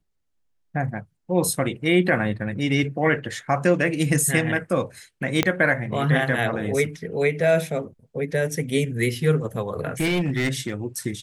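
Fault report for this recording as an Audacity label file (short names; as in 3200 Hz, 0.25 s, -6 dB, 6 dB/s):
5.430000	5.430000	pop -4 dBFS
10.000000	10.720000	clipped -18 dBFS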